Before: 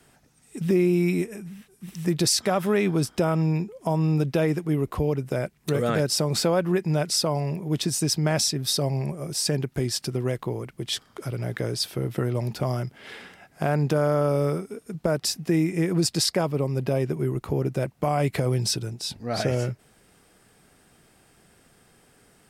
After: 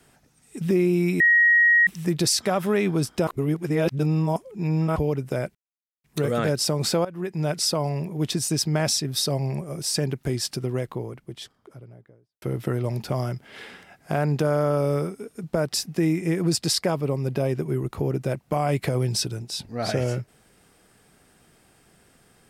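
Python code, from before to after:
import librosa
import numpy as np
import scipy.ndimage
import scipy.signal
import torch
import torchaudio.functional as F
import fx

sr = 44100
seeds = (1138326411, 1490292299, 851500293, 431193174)

y = fx.studio_fade_out(x, sr, start_s=9.94, length_s=1.99)
y = fx.edit(y, sr, fx.bleep(start_s=1.2, length_s=0.67, hz=1890.0, db=-13.5),
    fx.reverse_span(start_s=3.27, length_s=1.69),
    fx.insert_silence(at_s=5.55, length_s=0.49),
    fx.fade_in_from(start_s=6.56, length_s=0.49, floor_db=-17.5), tone=tone)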